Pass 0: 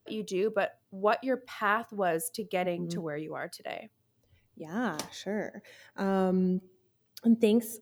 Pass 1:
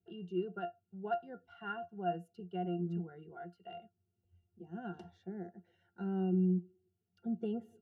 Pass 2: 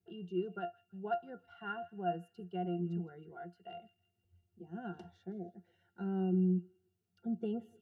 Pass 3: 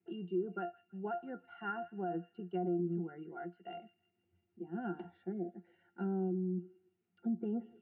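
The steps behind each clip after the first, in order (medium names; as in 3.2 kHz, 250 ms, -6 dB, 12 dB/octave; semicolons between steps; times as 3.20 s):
pitch-class resonator F, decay 0.12 s
time-frequency box 5.32–5.56 s, 760–2100 Hz -23 dB; feedback echo behind a high-pass 162 ms, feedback 43%, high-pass 2.3 kHz, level -16 dB
peak limiter -32.5 dBFS, peak gain reduction 9.5 dB; cabinet simulation 260–2300 Hz, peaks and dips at 310 Hz +5 dB, 450 Hz -9 dB, 650 Hz -8 dB, 1.1 kHz -7 dB, 1.6 kHz -5 dB; low-pass that closes with the level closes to 940 Hz, closed at -39.5 dBFS; trim +8.5 dB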